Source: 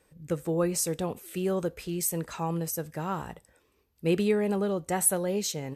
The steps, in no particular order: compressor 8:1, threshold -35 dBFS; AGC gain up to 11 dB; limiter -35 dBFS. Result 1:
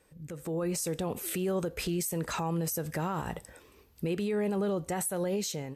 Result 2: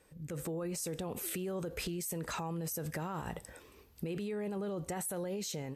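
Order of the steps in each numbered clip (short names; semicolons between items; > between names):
compressor > limiter > AGC; limiter > AGC > compressor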